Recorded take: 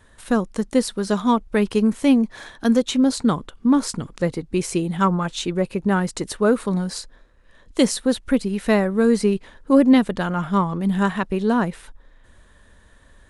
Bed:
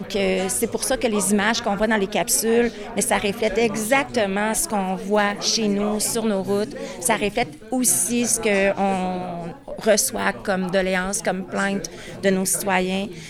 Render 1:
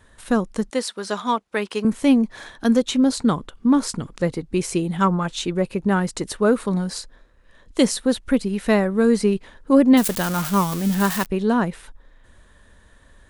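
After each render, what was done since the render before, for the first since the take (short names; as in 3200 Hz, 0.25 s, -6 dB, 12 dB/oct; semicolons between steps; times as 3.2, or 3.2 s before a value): 0.7–1.85 weighting filter A; 9.97–11.26 switching spikes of -16 dBFS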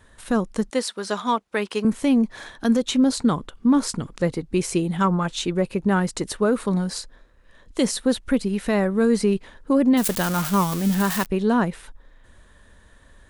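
limiter -10.5 dBFS, peak gain reduction 6 dB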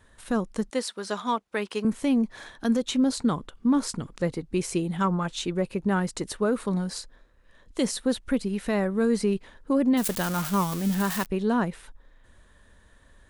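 gain -4.5 dB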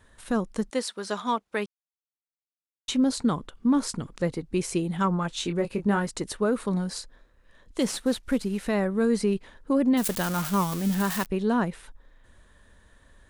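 1.66–2.88 mute; 5.34–6.07 doubler 24 ms -7 dB; 7.8–8.68 CVSD 64 kbps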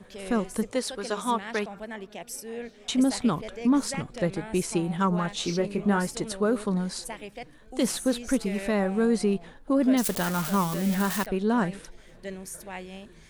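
add bed -18.5 dB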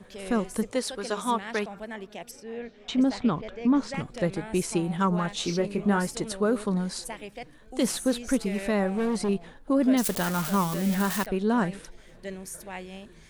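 2.31–3.94 air absorption 140 m; 8.87–9.29 hard clip -23 dBFS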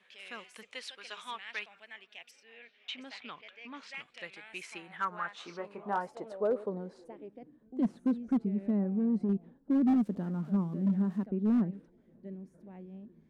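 band-pass sweep 2600 Hz -> 230 Hz, 4.45–7.71; overloaded stage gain 22.5 dB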